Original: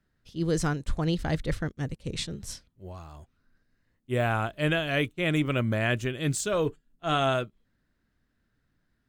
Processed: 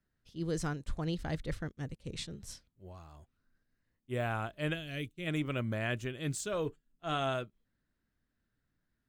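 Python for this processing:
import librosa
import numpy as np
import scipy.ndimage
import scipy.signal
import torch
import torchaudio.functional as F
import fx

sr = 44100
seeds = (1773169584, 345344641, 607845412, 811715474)

y = fx.peak_eq(x, sr, hz=950.0, db=-15.0, octaves=1.9, at=(4.73, 5.26), fade=0.02)
y = y * librosa.db_to_amplitude(-8.0)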